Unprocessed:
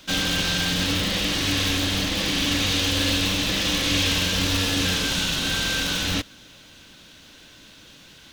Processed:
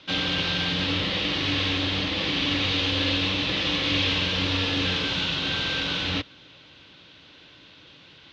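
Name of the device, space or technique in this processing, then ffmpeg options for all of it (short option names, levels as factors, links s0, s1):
guitar cabinet: -af "highpass=85,equalizer=f=220:t=q:w=4:g=-9,equalizer=f=670:t=q:w=4:g=-3,equalizer=f=1600:t=q:w=4:g=-4,lowpass=f=4100:w=0.5412,lowpass=f=4100:w=1.3066"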